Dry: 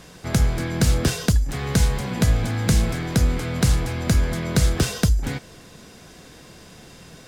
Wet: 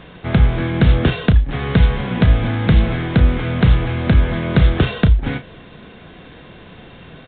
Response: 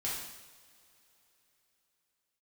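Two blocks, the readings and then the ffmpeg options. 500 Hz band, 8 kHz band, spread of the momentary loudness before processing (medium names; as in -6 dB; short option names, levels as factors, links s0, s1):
+5.5 dB, under -40 dB, 3 LU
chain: -filter_complex "[0:a]asplit=2[s0][s1];[s1]adelay=33,volume=0.282[s2];[s0][s2]amix=inputs=2:normalize=0,volume=1.88" -ar 8000 -c:a pcm_alaw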